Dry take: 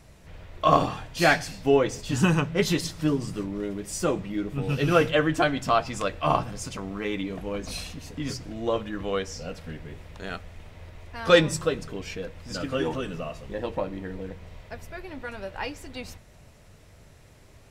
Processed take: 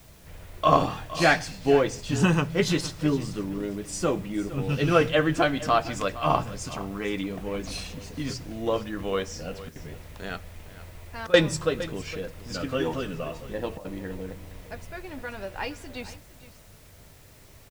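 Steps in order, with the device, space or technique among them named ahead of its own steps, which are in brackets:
worn cassette (low-pass filter 9,900 Hz; tape wow and flutter 25 cents; tape dropouts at 0:09.69/0:11.27/0:13.78, 66 ms −17 dB; white noise bed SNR 30 dB)
single-tap delay 462 ms −16 dB

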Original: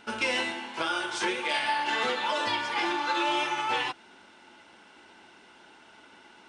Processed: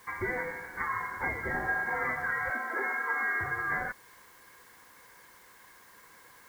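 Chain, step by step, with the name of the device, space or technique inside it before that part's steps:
scrambled radio voice (band-pass filter 320–2,800 Hz; voice inversion scrambler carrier 2,500 Hz; white noise bed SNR 25 dB)
0:02.50–0:03.41: Butterworth high-pass 220 Hz 96 dB per octave
level −2 dB

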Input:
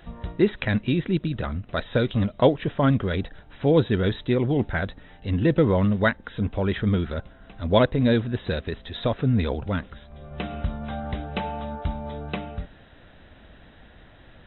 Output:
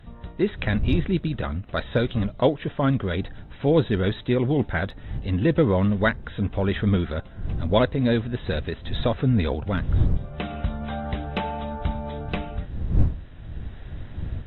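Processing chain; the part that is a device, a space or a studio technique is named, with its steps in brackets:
smartphone video outdoors (wind on the microphone 84 Hz; automatic gain control gain up to 6.5 dB; level −5 dB; AAC 64 kbit/s 44,100 Hz)

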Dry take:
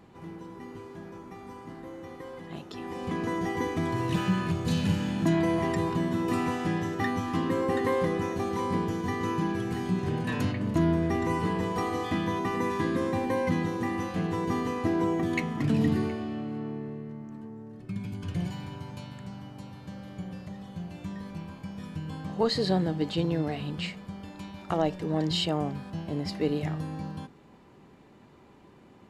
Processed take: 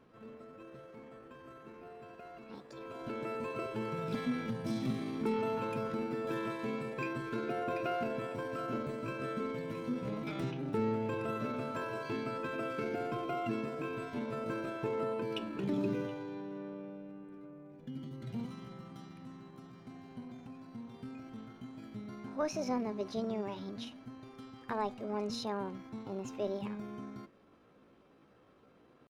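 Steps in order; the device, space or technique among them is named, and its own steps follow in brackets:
chipmunk voice (pitch shifter +5 semitones)
bass and treble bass 0 dB, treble −7 dB
level −8.5 dB

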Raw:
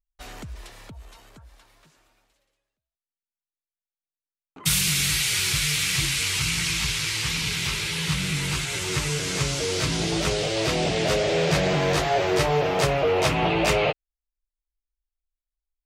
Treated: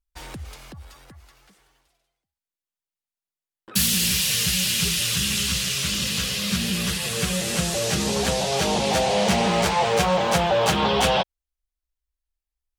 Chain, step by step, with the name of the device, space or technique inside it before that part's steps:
nightcore (speed change +24%)
level +1.5 dB

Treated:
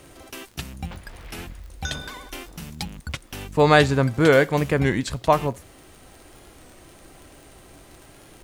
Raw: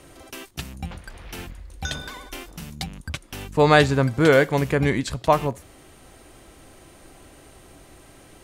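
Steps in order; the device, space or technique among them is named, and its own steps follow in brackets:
warped LP (wow of a warped record 33 1/3 rpm, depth 100 cents; surface crackle 34 per second −36 dBFS; pink noise bed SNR 35 dB)

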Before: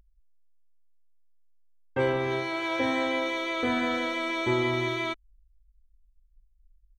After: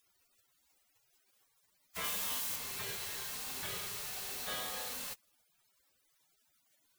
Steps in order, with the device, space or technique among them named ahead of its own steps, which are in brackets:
78 rpm shellac record (band-pass filter 120–5,200 Hz; surface crackle; white noise bed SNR 11 dB)
gate on every frequency bin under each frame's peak −20 dB weak
0:02.04–0:02.56: high-shelf EQ 5,100 Hz +6 dB

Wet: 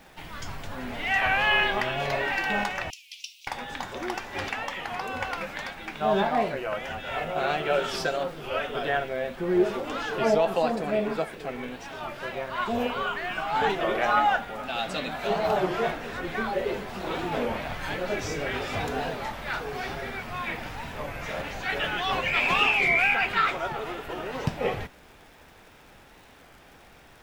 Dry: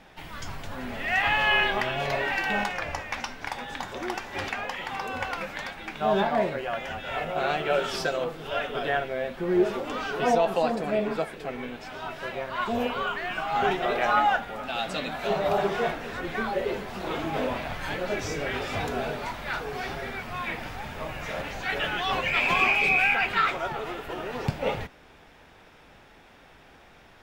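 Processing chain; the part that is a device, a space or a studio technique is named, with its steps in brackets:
warped LP (wow of a warped record 33 1/3 rpm, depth 160 cents; surface crackle 93 per second −45 dBFS; pink noise bed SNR 33 dB)
0:02.90–0:03.47: Butterworth high-pass 2,600 Hz 72 dB per octave

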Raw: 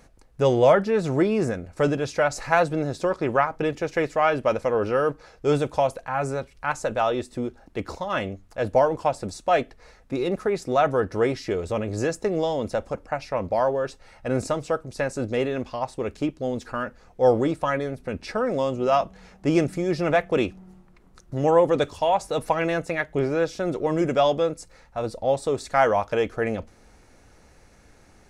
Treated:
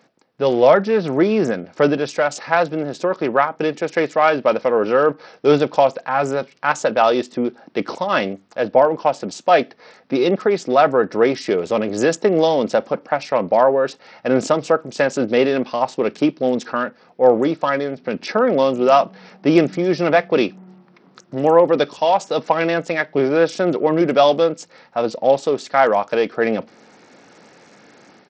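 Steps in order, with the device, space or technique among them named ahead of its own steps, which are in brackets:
Bluetooth headset (high-pass filter 170 Hz 24 dB per octave; automatic gain control gain up to 10 dB; downsampling to 16,000 Hz; SBC 64 kbit/s 44,100 Hz)

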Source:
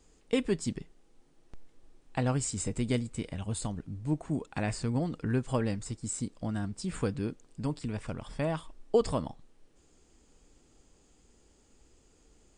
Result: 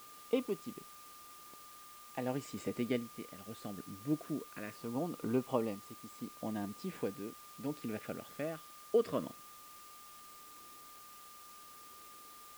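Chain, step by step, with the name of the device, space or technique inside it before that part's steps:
shortwave radio (band-pass filter 270–2,600 Hz; amplitude tremolo 0.75 Hz, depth 62%; auto-filter notch saw down 0.21 Hz 780–1,900 Hz; steady tone 1,200 Hz −56 dBFS; white noise bed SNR 16 dB)
level +1 dB

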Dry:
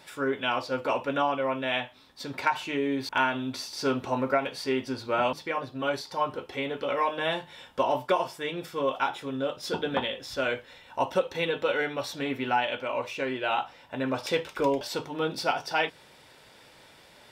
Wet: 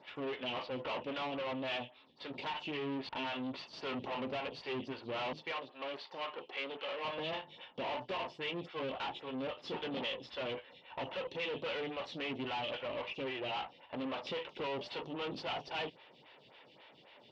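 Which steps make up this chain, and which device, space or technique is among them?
vibe pedal into a guitar amplifier (phaser with staggered stages 3.7 Hz; tube saturation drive 38 dB, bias 0.75; loudspeaker in its box 83–4,100 Hz, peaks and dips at 86 Hz −7 dB, 1,500 Hz −6 dB, 2,900 Hz +8 dB)
0:05.52–0:07.05: meter weighting curve A
level +2 dB

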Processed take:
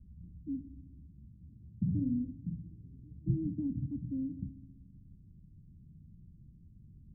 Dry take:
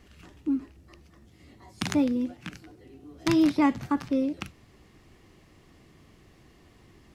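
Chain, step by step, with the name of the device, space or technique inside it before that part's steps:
the neighbour's flat through the wall (low-pass filter 180 Hz 24 dB per octave; parametric band 180 Hz +3.5 dB)
0:01.84–0:03.16: double-tracking delay 46 ms −4 dB
delay with a low-pass on its return 64 ms, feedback 72%, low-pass 400 Hz, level −13.5 dB
level +2.5 dB

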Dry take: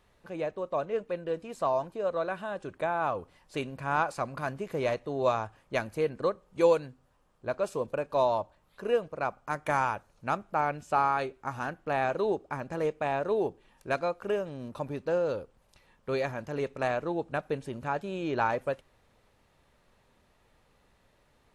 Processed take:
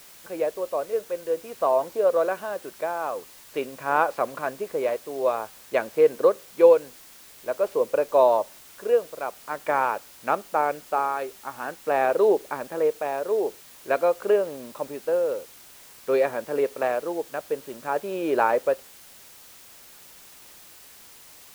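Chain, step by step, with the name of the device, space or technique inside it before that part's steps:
shortwave radio (band-pass filter 290–2,900 Hz; amplitude tremolo 0.49 Hz, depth 51%; white noise bed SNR 19 dB)
dynamic equaliser 470 Hz, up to +7 dB, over −44 dBFS, Q 1.7
level +5 dB

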